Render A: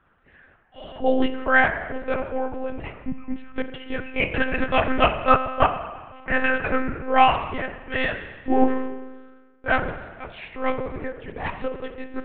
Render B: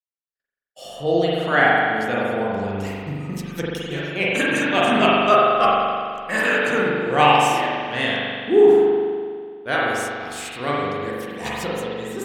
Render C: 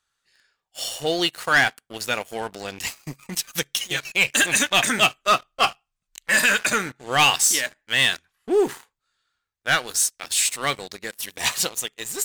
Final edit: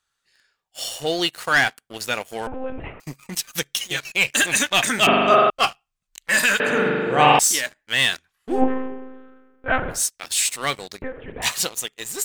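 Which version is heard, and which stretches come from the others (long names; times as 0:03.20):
C
0:02.47–0:03.00: punch in from A
0:05.07–0:05.50: punch in from B
0:06.60–0:07.39: punch in from B
0:08.55–0:09.97: punch in from A, crossfade 0.16 s
0:11.02–0:11.42: punch in from A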